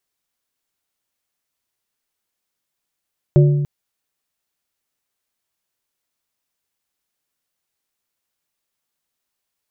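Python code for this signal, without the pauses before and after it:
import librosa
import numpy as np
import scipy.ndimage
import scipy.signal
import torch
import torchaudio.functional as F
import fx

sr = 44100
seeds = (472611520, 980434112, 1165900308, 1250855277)

y = fx.strike_glass(sr, length_s=0.29, level_db=-6.5, body='plate', hz=145.0, decay_s=1.39, tilt_db=6.5, modes=3)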